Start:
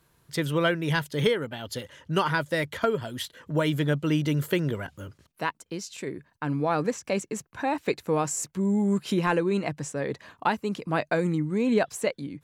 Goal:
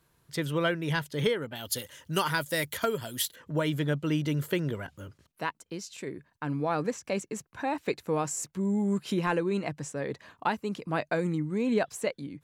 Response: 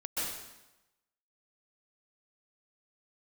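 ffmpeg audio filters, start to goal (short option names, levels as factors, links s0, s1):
-filter_complex "[0:a]asettb=1/sr,asplit=3[s0][s1][s2];[s0]atrim=end=1.554[s3];[s1]atrim=start=1.55:end=3.36,asetpts=PTS-STARTPTS,afade=t=in:d=0.004:c=qsin,afade=t=out:st=1.806:d=0.004:c=qsin,aemphasis=mode=production:type=75fm[s4];[s2]atrim=start=3.356[s5];[s3][s4]acrossfade=d=0.004:c1=hsin:c2=qsin[s6];[s6][s5]acrossfade=d=0.004:c1=qsin:c2=hsin,volume=0.668"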